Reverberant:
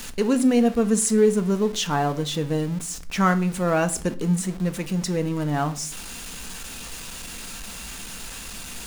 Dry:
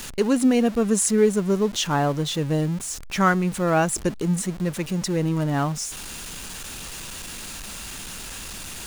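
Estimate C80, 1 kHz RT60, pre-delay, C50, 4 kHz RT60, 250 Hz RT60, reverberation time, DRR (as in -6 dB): 21.0 dB, 0.40 s, 4 ms, 17.0 dB, 0.35 s, 0.60 s, 0.45 s, 7.5 dB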